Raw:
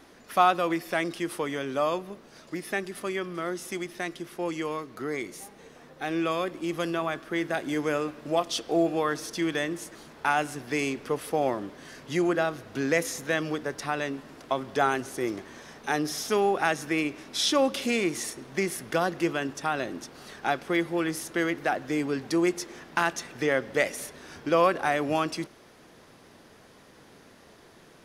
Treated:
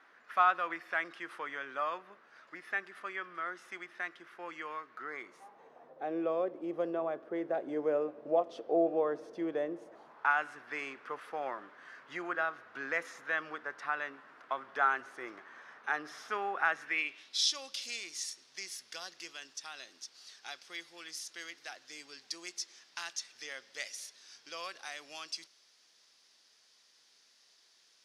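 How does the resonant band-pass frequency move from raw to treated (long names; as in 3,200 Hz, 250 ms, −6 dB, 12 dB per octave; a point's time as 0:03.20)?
resonant band-pass, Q 2.1
0:05.05 1,500 Hz
0:06.12 540 Hz
0:09.83 540 Hz
0:10.32 1,400 Hz
0:16.73 1,400 Hz
0:17.44 5,100 Hz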